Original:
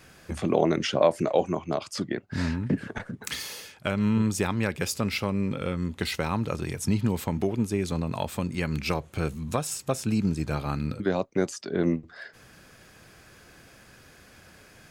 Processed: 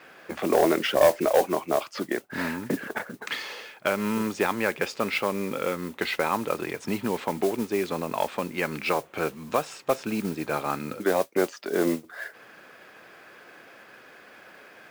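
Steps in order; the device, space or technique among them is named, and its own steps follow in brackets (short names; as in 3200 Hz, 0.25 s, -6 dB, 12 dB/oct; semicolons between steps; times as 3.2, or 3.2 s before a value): carbon microphone (BPF 380–2700 Hz; soft clip -17 dBFS, distortion -14 dB; modulation noise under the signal 17 dB); gain +6.5 dB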